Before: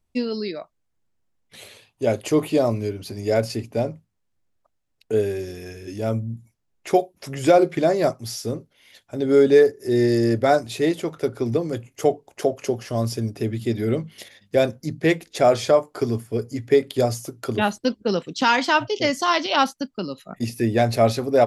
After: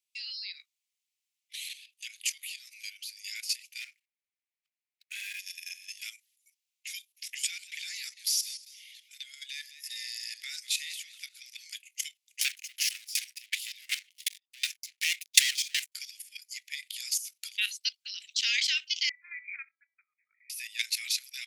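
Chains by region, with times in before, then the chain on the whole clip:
2.07–2.73 s: high-pass 58 Hz + compression 4:1, threshold -26 dBFS
3.81–5.39 s: median filter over 15 samples + high-order bell 1.1 kHz +8.5 dB 2.6 oct
7.14–11.68 s: compression 5:1, threshold -18 dBFS + modulated delay 198 ms, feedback 31%, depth 89 cents, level -16 dB
12.41–15.92 s: waveshaping leveller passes 5 + sawtooth tremolo in dB decaying 2.7 Hz, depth 31 dB
19.09–20.50 s: brick-wall FIR low-pass 2.5 kHz + feedback comb 330 Hz, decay 0.33 s
whole clip: steep high-pass 2.2 kHz 48 dB/octave; dynamic bell 2.9 kHz, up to -3 dB, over -41 dBFS, Q 0.87; level held to a coarse grid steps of 12 dB; trim +8.5 dB

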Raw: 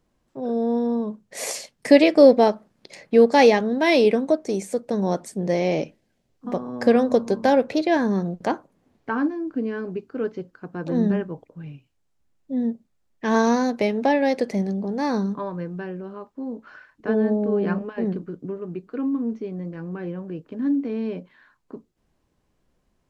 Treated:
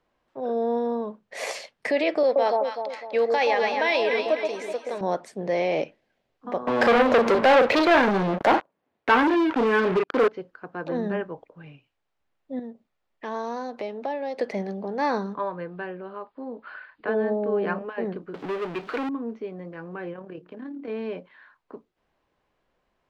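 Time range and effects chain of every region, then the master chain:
2.23–5.01 s: high-pass 800 Hz 6 dB/octave + echo whose repeats swap between lows and highs 126 ms, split 1 kHz, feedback 65%, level -4 dB
6.67–10.28 s: high-pass 62 Hz + doubling 38 ms -10.5 dB + waveshaping leveller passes 5
12.59–14.39 s: dynamic bell 2.1 kHz, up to -8 dB, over -42 dBFS, Q 1.5 + compression 2:1, threshold -34 dBFS + band-stop 1.6 kHz, Q 20
15.42–17.07 s: brick-wall FIR low-pass 5.1 kHz + tape noise reduction on one side only encoder only
18.34–19.09 s: frequency weighting D + power-law waveshaper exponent 0.5
20.13–20.88 s: de-hum 59.46 Hz, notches 6 + compression 10:1, threshold -26 dBFS + AM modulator 36 Hz, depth 30%
whole clip: peak limiter -14 dBFS; three-band isolator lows -13 dB, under 440 Hz, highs -17 dB, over 4 kHz; trim +3.5 dB

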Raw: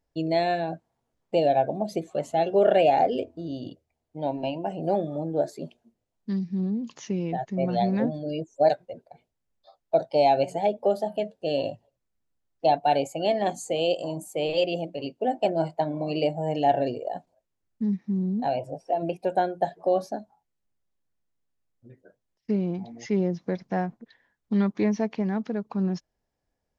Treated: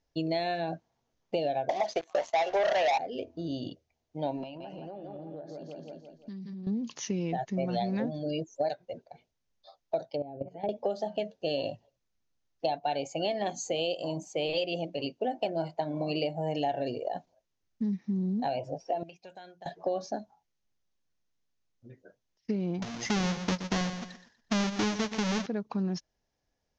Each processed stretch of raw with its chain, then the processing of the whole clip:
1.69–2.98 s: high-pass 600 Hz + peaking EQ 950 Hz +12.5 dB 1.6 oct + waveshaping leveller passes 3
4.43–6.67 s: low-pass that closes with the level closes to 2.3 kHz, closed at -20.5 dBFS + feedback delay 169 ms, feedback 46%, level -7 dB + compression 16:1, threshold -37 dBFS
10.10–10.69 s: low-pass that closes with the level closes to 390 Hz, closed at -18 dBFS + peaking EQ 950 Hz -5.5 dB 1.2 oct + level held to a coarse grid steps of 14 dB
19.03–19.66 s: amplifier tone stack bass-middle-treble 5-5-5 + compression, threshold -42 dBFS
22.82–25.46 s: square wave that keeps the level + feedback delay 121 ms, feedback 29%, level -13 dB
whole clip: elliptic low-pass 6.4 kHz, stop band 40 dB; treble shelf 4 kHz +9.5 dB; compression, threshold -27 dBFS

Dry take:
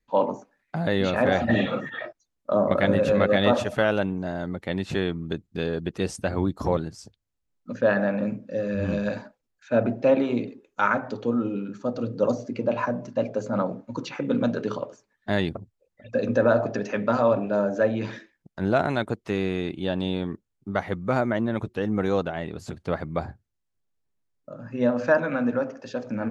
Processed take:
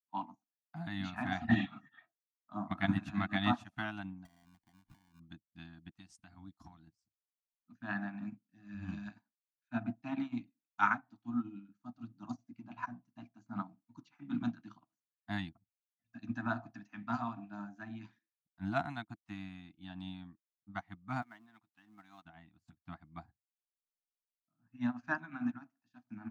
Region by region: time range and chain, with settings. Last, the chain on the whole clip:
4.25–5.20 s: compression 20:1, threshold -30 dBFS + bass shelf 69 Hz +6.5 dB + sample-rate reducer 1.3 kHz
5.97–6.87 s: peaking EQ 5.8 kHz +6 dB 1.8 oct + compression 2:1, threshold -29 dBFS
21.22–22.25 s: companding laws mixed up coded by mu + high-pass 690 Hz 6 dB/octave
whole clip: Chebyshev band-stop 320–690 Hz, order 4; upward expansion 2.5:1, over -44 dBFS; trim -3 dB

